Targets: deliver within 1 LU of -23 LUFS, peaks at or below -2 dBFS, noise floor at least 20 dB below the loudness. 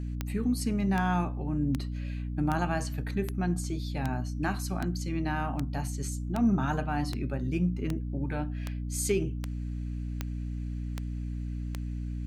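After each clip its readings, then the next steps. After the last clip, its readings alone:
clicks 16; hum 60 Hz; harmonics up to 300 Hz; hum level -31 dBFS; loudness -32.0 LUFS; peak -12.0 dBFS; loudness target -23.0 LUFS
-> de-click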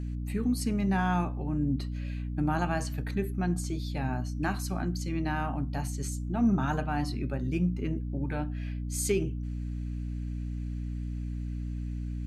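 clicks 0; hum 60 Hz; harmonics up to 300 Hz; hum level -31 dBFS
-> de-hum 60 Hz, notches 5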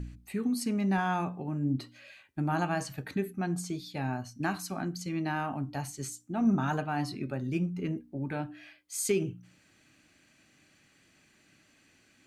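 hum none; loudness -33.0 LUFS; peak -17.0 dBFS; loudness target -23.0 LUFS
-> gain +10 dB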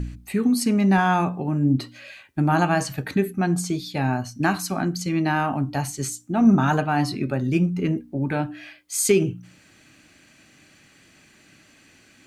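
loudness -23.0 LUFS; peak -7.0 dBFS; noise floor -55 dBFS

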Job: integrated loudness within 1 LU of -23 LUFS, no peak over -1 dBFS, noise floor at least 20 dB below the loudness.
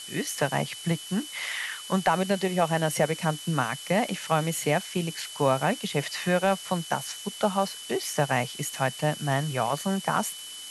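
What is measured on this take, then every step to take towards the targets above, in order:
steady tone 3000 Hz; tone level -41 dBFS; noise floor -41 dBFS; noise floor target -48 dBFS; loudness -27.5 LUFS; peak -11.0 dBFS; loudness target -23.0 LUFS
-> notch 3000 Hz, Q 30; noise print and reduce 7 dB; gain +4.5 dB

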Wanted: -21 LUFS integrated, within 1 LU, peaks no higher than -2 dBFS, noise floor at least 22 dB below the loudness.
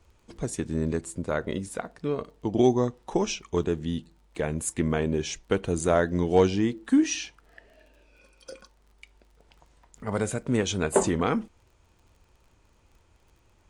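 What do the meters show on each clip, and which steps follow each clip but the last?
ticks 32/s; loudness -27.0 LUFS; peak -8.5 dBFS; loudness target -21.0 LUFS
-> de-click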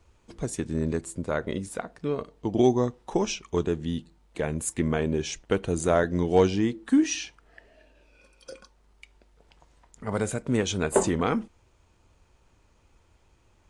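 ticks 0/s; loudness -27.0 LUFS; peak -8.5 dBFS; loudness target -21.0 LUFS
-> gain +6 dB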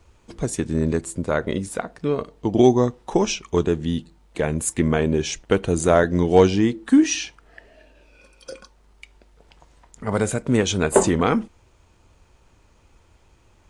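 loudness -21.0 LUFS; peak -2.5 dBFS; noise floor -57 dBFS

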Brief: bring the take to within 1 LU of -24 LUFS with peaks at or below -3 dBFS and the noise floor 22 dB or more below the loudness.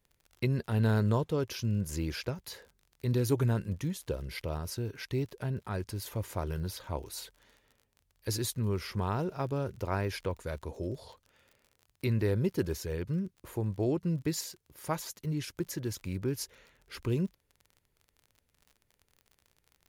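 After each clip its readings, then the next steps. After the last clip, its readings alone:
ticks 39/s; loudness -34.0 LUFS; peak -16.0 dBFS; loudness target -24.0 LUFS
-> de-click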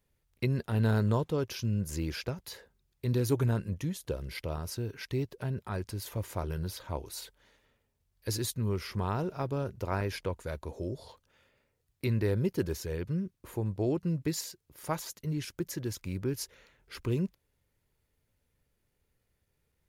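ticks 0.25/s; loudness -34.0 LUFS; peak -16.0 dBFS; loudness target -24.0 LUFS
-> gain +10 dB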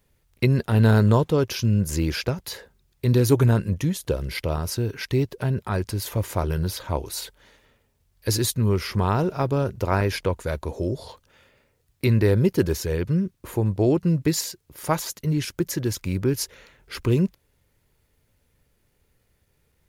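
loudness -24.0 LUFS; peak -6.0 dBFS; noise floor -68 dBFS

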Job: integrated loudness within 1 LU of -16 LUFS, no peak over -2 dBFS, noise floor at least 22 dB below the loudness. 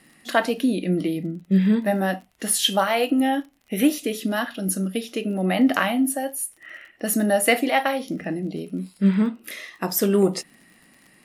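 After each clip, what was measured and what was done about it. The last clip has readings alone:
ticks 40/s; loudness -23.0 LUFS; peak -5.5 dBFS; loudness target -16.0 LUFS
-> de-click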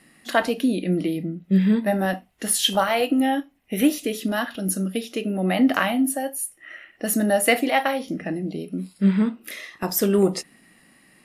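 ticks 0.18/s; loudness -23.0 LUFS; peak -5.5 dBFS; loudness target -16.0 LUFS
-> gain +7 dB; limiter -2 dBFS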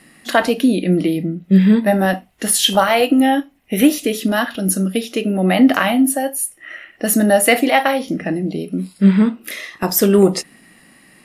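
loudness -16.0 LUFS; peak -2.0 dBFS; noise floor -50 dBFS

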